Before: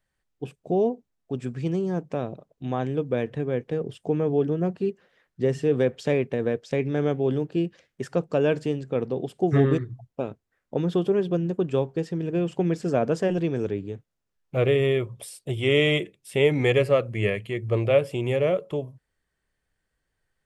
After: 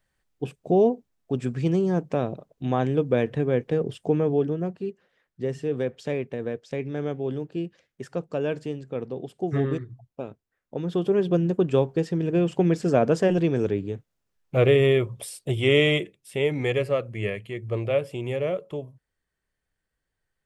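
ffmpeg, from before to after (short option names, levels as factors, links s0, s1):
-af "volume=3.76,afade=t=out:st=3.94:d=0.81:silence=0.375837,afade=t=in:st=10.81:d=0.54:silence=0.398107,afade=t=out:st=15.49:d=0.89:silence=0.446684"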